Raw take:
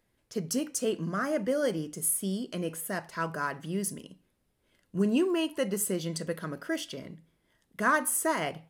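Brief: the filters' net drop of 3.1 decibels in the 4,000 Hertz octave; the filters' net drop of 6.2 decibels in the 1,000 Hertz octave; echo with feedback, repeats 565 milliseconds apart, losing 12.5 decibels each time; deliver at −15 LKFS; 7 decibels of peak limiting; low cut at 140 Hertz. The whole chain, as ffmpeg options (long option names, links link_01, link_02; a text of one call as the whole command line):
ffmpeg -i in.wav -af "highpass=140,equalizer=frequency=1000:width_type=o:gain=-7.5,equalizer=frequency=4000:width_type=o:gain=-4,alimiter=limit=-23dB:level=0:latency=1,aecho=1:1:565|1130|1695:0.237|0.0569|0.0137,volume=19dB" out.wav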